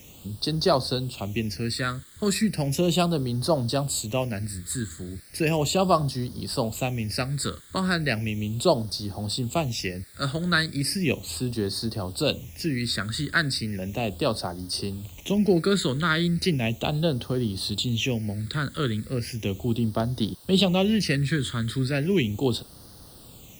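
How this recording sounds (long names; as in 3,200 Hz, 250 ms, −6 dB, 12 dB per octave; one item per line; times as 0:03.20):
a quantiser's noise floor 8 bits, dither triangular
phaser sweep stages 8, 0.36 Hz, lowest notch 770–2,400 Hz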